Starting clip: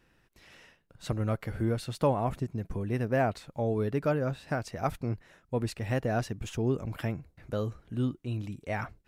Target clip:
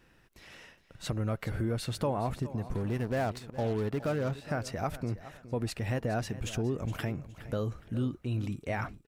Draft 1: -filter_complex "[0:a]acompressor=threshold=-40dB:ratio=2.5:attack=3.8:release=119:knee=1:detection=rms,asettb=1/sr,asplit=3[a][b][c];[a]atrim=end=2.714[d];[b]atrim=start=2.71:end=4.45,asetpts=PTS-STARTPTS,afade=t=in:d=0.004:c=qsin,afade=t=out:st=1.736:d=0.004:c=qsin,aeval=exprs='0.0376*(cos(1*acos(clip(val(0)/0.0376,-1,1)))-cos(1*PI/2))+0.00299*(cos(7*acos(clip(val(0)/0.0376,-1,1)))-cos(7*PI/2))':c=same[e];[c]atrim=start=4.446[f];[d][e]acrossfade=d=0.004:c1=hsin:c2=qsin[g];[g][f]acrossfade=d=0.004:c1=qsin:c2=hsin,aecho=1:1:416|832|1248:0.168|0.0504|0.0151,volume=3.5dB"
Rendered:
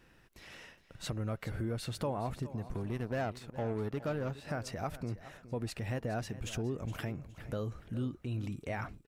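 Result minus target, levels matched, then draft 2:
compressor: peak gain reduction +4.5 dB
-filter_complex "[0:a]acompressor=threshold=-32.5dB:ratio=2.5:attack=3.8:release=119:knee=1:detection=rms,asettb=1/sr,asplit=3[a][b][c];[a]atrim=end=2.714[d];[b]atrim=start=2.71:end=4.45,asetpts=PTS-STARTPTS,afade=t=in:d=0.004:c=qsin,afade=t=out:st=1.736:d=0.004:c=qsin,aeval=exprs='0.0376*(cos(1*acos(clip(val(0)/0.0376,-1,1)))-cos(1*PI/2))+0.00299*(cos(7*acos(clip(val(0)/0.0376,-1,1)))-cos(7*PI/2))':c=same[e];[c]atrim=start=4.446[f];[d][e]acrossfade=d=0.004:c1=hsin:c2=qsin[g];[g][f]acrossfade=d=0.004:c1=qsin:c2=hsin,aecho=1:1:416|832|1248:0.168|0.0504|0.0151,volume=3.5dB"

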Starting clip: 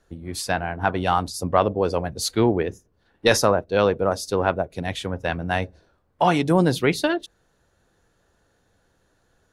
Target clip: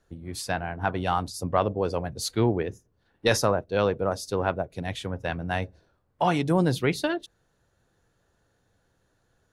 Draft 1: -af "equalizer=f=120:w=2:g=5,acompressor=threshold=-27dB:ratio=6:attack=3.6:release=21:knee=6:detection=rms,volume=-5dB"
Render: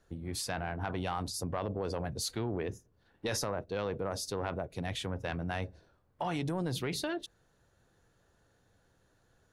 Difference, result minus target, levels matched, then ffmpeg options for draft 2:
compressor: peak gain reduction +14.5 dB
-af "equalizer=f=120:w=2:g=5,volume=-5dB"

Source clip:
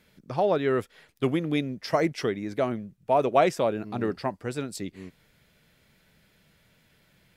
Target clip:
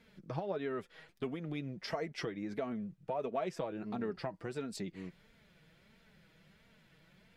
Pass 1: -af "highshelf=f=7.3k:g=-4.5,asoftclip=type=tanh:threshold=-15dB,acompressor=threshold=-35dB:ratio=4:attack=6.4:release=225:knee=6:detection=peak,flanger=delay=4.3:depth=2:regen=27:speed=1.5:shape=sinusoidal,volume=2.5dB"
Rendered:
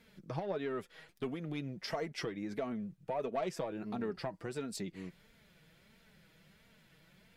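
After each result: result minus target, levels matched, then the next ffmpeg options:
soft clip: distortion +18 dB; 8000 Hz band +3.5 dB
-af "highshelf=f=7.3k:g=-4.5,asoftclip=type=tanh:threshold=-4dB,acompressor=threshold=-35dB:ratio=4:attack=6.4:release=225:knee=6:detection=peak,flanger=delay=4.3:depth=2:regen=27:speed=1.5:shape=sinusoidal,volume=2.5dB"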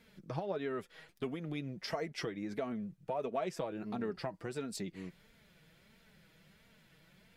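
8000 Hz band +3.5 dB
-af "highshelf=f=7.3k:g=-13.5,asoftclip=type=tanh:threshold=-4dB,acompressor=threshold=-35dB:ratio=4:attack=6.4:release=225:knee=6:detection=peak,flanger=delay=4.3:depth=2:regen=27:speed=1.5:shape=sinusoidal,volume=2.5dB"

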